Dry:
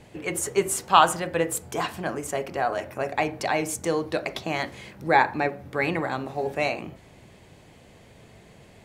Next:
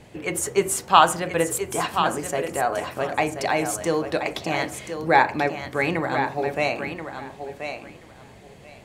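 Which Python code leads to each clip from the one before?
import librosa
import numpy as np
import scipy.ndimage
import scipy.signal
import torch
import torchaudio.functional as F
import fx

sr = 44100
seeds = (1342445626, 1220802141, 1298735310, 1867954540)

y = fx.echo_thinned(x, sr, ms=1031, feedback_pct=17, hz=190.0, wet_db=-8.0)
y = y * librosa.db_to_amplitude(2.0)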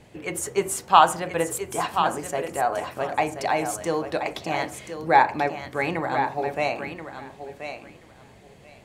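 y = fx.dynamic_eq(x, sr, hz=840.0, q=1.7, threshold_db=-33.0, ratio=4.0, max_db=5)
y = y * librosa.db_to_amplitude(-3.5)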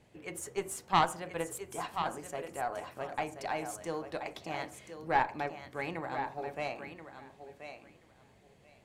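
y = fx.tube_stage(x, sr, drive_db=6.0, bias=0.7)
y = y * librosa.db_to_amplitude(-8.0)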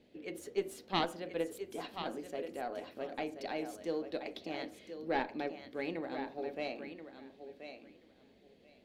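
y = fx.graphic_eq(x, sr, hz=(125, 250, 500, 1000, 4000, 8000), db=(-10, 11, 6, -8, 9, -10))
y = y * librosa.db_to_amplitude(-5.0)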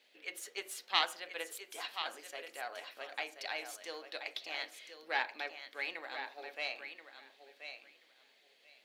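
y = scipy.signal.sosfilt(scipy.signal.butter(2, 1300.0, 'highpass', fs=sr, output='sos'), x)
y = y * librosa.db_to_amplitude(7.0)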